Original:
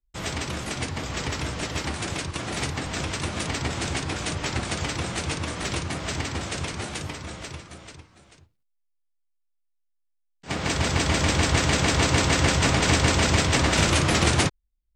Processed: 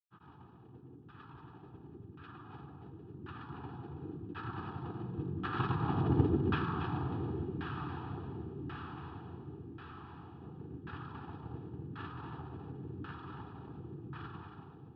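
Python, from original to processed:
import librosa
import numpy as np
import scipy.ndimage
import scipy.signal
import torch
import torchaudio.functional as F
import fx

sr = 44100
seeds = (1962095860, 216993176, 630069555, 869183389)

y = fx.doppler_pass(x, sr, speed_mps=5, closest_m=1.3, pass_at_s=6.2)
y = scipy.signal.sosfilt(scipy.signal.butter(4, 110.0, 'highpass', fs=sr, output='sos'), y)
y = fx.riaa(y, sr, side='playback')
y = fx.granulator(y, sr, seeds[0], grain_ms=100.0, per_s=20.0, spray_ms=100.0, spread_st=0)
y = fx.weighting(y, sr, curve='D')
y = fx.echo_diffused(y, sr, ms=1020, feedback_pct=61, wet_db=-7.5)
y = fx.filter_lfo_lowpass(y, sr, shape='saw_down', hz=0.92, low_hz=310.0, high_hz=1600.0, q=2.0)
y = fx.fixed_phaser(y, sr, hz=2100.0, stages=6)
y = y + 0.38 * np.pad(y, (int(2.4 * sr / 1000.0), 0))[:len(y)]
y = y + 10.0 ** (-9.5 / 20.0) * np.pad(y, (int(279 * sr / 1000.0), 0))[:len(y)]
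y = y * librosa.db_to_amplitude(3.5)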